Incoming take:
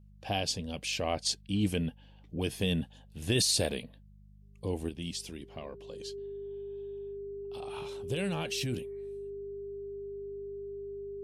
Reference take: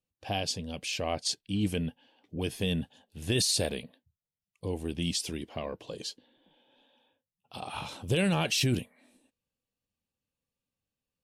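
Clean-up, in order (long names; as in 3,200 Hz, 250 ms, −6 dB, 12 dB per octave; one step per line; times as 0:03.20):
hum removal 50.5 Hz, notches 4
notch filter 400 Hz, Q 30
level 0 dB, from 0:04.89 +7 dB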